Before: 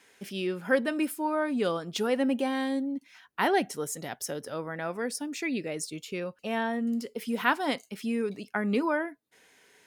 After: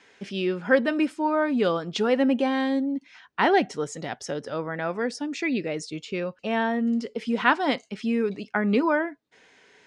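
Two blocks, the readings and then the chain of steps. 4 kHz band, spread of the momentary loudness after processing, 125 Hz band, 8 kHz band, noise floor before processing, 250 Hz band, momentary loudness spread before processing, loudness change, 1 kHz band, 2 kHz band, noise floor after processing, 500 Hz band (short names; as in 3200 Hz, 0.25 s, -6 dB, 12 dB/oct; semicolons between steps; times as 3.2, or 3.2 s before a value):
+3.5 dB, 10 LU, +5.0 dB, -4.0 dB, -63 dBFS, +5.0 dB, 9 LU, +5.0 dB, +5.0 dB, +4.5 dB, -59 dBFS, +5.0 dB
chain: Bessel low-pass 4900 Hz, order 6; gain +5 dB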